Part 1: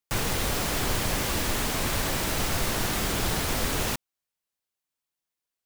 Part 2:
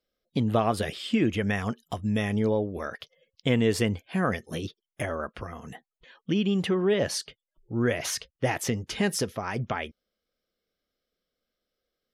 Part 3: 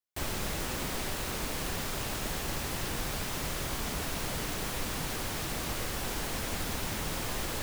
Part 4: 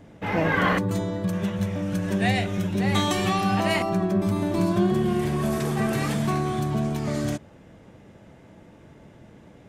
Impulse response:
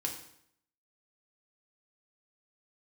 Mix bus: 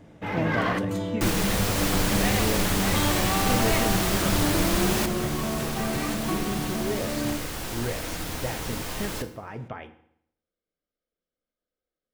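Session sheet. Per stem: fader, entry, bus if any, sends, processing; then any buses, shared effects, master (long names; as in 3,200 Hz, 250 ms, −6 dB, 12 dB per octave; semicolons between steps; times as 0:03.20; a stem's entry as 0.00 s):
+1.0 dB, 1.10 s, no send, no processing
−10.0 dB, 0.00 s, send −4.5 dB, low-pass filter 1,700 Hz 6 dB per octave
−3.5 dB, 1.60 s, send −3 dB, no processing
−5.0 dB, 0.00 s, send −7.5 dB, soft clipping −18 dBFS, distortion −17 dB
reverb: on, RT60 0.70 s, pre-delay 3 ms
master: no processing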